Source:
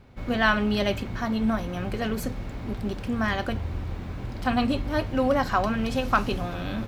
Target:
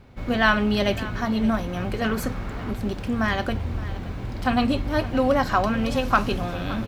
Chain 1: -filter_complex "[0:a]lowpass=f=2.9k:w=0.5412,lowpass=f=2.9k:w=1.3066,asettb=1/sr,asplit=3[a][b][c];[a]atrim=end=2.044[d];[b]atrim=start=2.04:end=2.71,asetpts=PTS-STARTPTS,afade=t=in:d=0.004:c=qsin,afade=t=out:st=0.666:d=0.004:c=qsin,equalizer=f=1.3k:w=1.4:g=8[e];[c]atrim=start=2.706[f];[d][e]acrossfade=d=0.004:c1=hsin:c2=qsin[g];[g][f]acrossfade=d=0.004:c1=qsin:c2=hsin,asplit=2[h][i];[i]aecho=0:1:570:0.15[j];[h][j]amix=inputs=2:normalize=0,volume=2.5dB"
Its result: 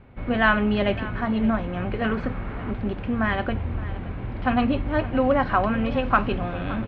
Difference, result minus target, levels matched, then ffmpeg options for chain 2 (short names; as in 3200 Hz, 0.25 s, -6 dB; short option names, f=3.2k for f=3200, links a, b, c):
4000 Hz band -5.0 dB
-filter_complex "[0:a]asettb=1/sr,asplit=3[a][b][c];[a]atrim=end=2.044[d];[b]atrim=start=2.04:end=2.71,asetpts=PTS-STARTPTS,afade=t=in:d=0.004:c=qsin,afade=t=out:st=0.666:d=0.004:c=qsin,equalizer=f=1.3k:w=1.4:g=8[e];[c]atrim=start=2.706[f];[d][e]acrossfade=d=0.004:c1=hsin:c2=qsin[g];[g][f]acrossfade=d=0.004:c1=qsin:c2=hsin,asplit=2[h][i];[i]aecho=0:1:570:0.15[j];[h][j]amix=inputs=2:normalize=0,volume=2.5dB"